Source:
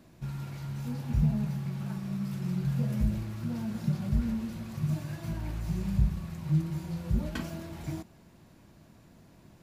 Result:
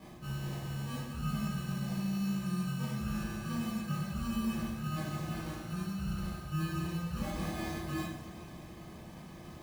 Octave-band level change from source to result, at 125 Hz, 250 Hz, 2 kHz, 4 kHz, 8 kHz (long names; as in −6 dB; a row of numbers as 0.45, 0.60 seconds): −6.0, −2.5, +4.0, +5.0, +4.0 decibels